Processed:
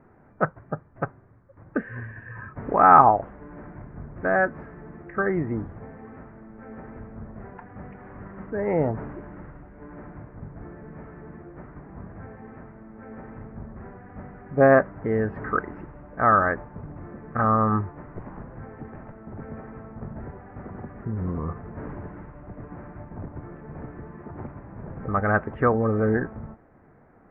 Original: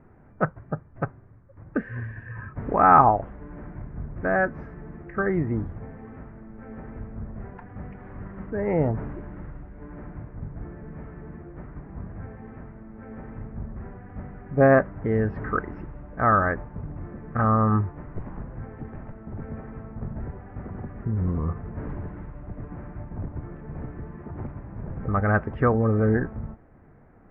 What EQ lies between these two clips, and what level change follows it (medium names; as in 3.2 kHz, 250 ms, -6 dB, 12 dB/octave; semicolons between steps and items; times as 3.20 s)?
low-pass 2.4 kHz 12 dB/octave; bass shelf 94 Hz -8 dB; bass shelf 360 Hz -3.5 dB; +2.5 dB